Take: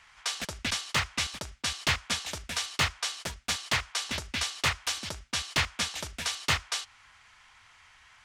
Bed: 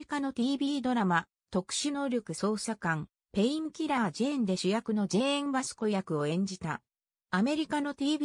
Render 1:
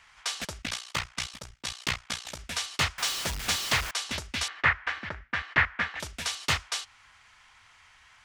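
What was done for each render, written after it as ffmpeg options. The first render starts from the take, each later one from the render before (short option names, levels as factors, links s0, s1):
-filter_complex "[0:a]asettb=1/sr,asplit=3[s0][s1][s2];[s0]atrim=end=0.624[s3];[s1]atrim=start=0.62:end=2.39,asetpts=PTS-STARTPTS,afade=t=in:d=0.004:c=qsin,afade=t=out:st=1.766:d=0.004:c=qsin,tremolo=f=60:d=0.889[s4];[s2]atrim=start=2.386[s5];[s3][s4]acrossfade=d=0.004:c1=hsin:c2=qsin[s6];[s6][s5]acrossfade=d=0.004:c1=qsin:c2=hsin,asettb=1/sr,asplit=3[s7][s8][s9];[s7]atrim=end=2.984[s10];[s8]atrim=start=2.98:end=3.91,asetpts=PTS-STARTPTS,afade=t=in:d=0.004:c=qsin,afade=t=out:st=0.926:d=0.004:c=qsin,aeval=exprs='val(0)+0.5*0.0316*sgn(val(0))':c=same[s11];[s9]atrim=start=3.906[s12];[s10][s11]acrossfade=d=0.004:c1=hsin:c2=qsin[s13];[s13][s12]acrossfade=d=0.004:c1=qsin:c2=hsin,asettb=1/sr,asplit=3[s14][s15][s16];[s14]atrim=end=4.484[s17];[s15]atrim=start=4.48:end=6,asetpts=PTS-STARTPTS,afade=t=in:d=0.004:c=qsin,afade=t=out:st=1.516:d=0.004:c=qsin,lowpass=f=1800:t=q:w=3.3[s18];[s16]atrim=start=5.996[s19];[s17][s18]acrossfade=d=0.004:c1=hsin:c2=qsin[s20];[s20][s19]acrossfade=d=0.004:c1=qsin:c2=hsin"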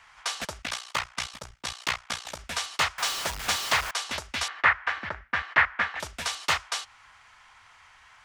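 -filter_complex "[0:a]acrossover=split=560|1400[s0][s1][s2];[s0]alimiter=level_in=3.55:limit=0.0631:level=0:latency=1:release=292,volume=0.282[s3];[s1]acontrast=78[s4];[s3][s4][s2]amix=inputs=3:normalize=0"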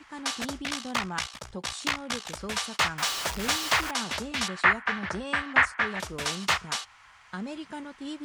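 -filter_complex "[1:a]volume=0.398[s0];[0:a][s0]amix=inputs=2:normalize=0"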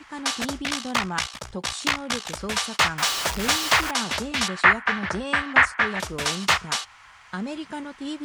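-af "volume=1.78,alimiter=limit=0.794:level=0:latency=1"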